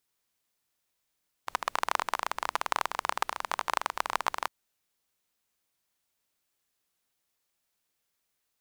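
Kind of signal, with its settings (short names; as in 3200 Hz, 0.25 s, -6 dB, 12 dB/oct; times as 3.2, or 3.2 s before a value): rain from filtered ticks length 3.01 s, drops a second 24, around 1000 Hz, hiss -27 dB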